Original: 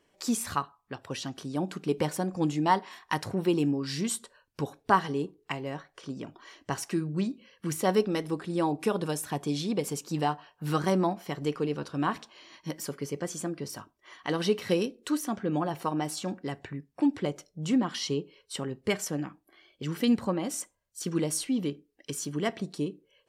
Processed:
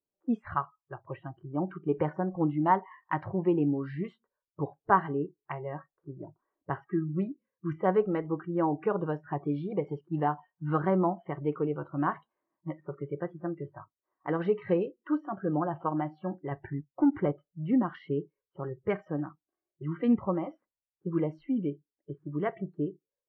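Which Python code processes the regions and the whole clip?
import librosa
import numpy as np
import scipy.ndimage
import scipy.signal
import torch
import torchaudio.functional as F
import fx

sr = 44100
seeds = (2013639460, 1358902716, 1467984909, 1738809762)

y = fx.chain(x, sr, fx.high_shelf(hz=2700.0, db=-2.0),
    fx.leveller(passes=1), at=(16.51, 17.32))
y = scipy.signal.sosfilt(scipy.signal.butter(4, 1800.0, 'lowpass', fs=sr, output='sos'), y)
y = fx.env_lowpass(y, sr, base_hz=750.0, full_db=-25.5)
y = fx.noise_reduce_blind(y, sr, reduce_db=25)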